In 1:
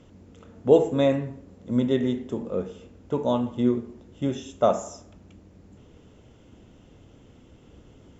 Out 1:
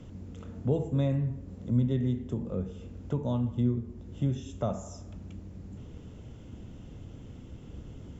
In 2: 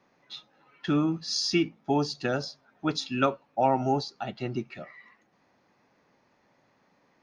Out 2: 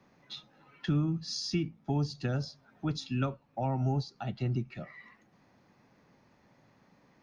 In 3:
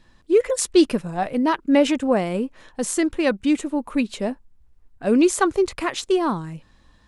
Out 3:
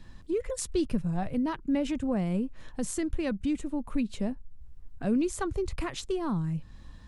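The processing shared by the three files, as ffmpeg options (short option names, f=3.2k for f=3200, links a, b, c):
-filter_complex "[0:a]bass=f=250:g=9,treble=f=4k:g=1,acrossover=split=140[a][b];[b]acompressor=threshold=-41dB:ratio=2[c];[a][c]amix=inputs=2:normalize=0"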